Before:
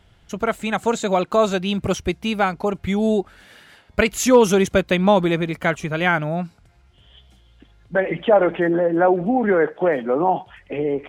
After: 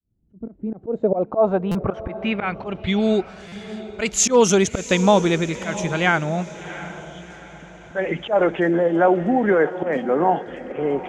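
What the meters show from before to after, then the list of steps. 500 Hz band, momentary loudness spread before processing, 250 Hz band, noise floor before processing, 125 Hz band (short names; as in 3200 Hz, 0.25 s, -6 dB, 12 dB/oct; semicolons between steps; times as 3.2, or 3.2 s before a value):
-1.0 dB, 9 LU, -0.5 dB, -54 dBFS, 0.0 dB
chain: opening faded in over 1.03 s; auto swell 0.119 s; low-pass sweep 270 Hz -> 6900 Hz, 0.44–3.46; on a send: diffused feedback echo 0.71 s, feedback 44%, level -14 dB; on the sum: stuck buffer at 1.71/3.48, samples 256, times 6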